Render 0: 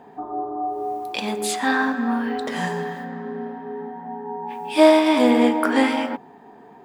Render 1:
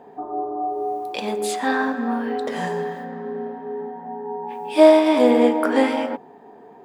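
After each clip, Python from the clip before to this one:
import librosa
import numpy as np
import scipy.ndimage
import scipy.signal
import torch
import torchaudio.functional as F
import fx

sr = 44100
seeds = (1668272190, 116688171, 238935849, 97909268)

y = fx.peak_eq(x, sr, hz=500.0, db=8.0, octaves=1.2)
y = F.gain(torch.from_numpy(y), -3.5).numpy()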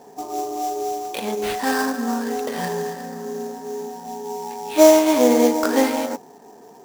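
y = fx.sample_hold(x, sr, seeds[0], rate_hz=6600.0, jitter_pct=20)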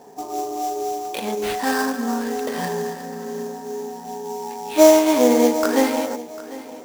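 y = fx.echo_feedback(x, sr, ms=748, feedback_pct=33, wet_db=-17.5)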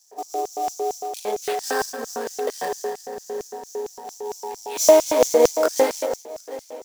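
y = fx.filter_lfo_highpass(x, sr, shape='square', hz=4.4, low_hz=480.0, high_hz=5800.0, q=2.5)
y = F.gain(torch.from_numpy(y), -3.0).numpy()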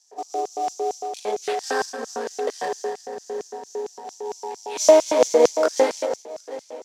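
y = fx.bandpass_edges(x, sr, low_hz=170.0, high_hz=6800.0)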